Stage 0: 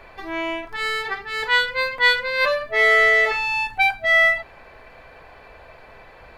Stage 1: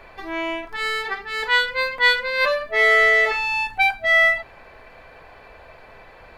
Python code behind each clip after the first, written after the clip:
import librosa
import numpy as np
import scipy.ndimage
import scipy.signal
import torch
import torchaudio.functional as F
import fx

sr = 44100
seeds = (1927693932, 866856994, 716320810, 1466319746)

y = fx.hum_notches(x, sr, base_hz=60, count=2)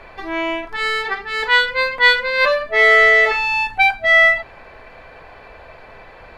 y = fx.high_shelf(x, sr, hz=10000.0, db=-11.0)
y = y * librosa.db_to_amplitude(4.5)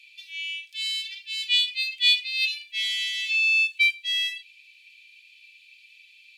y = scipy.signal.sosfilt(scipy.signal.cheby1(6, 3, 2400.0, 'highpass', fs=sr, output='sos'), x)
y = y * librosa.db_to_amplitude(2.0)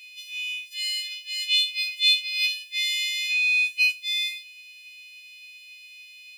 y = fx.freq_snap(x, sr, grid_st=3)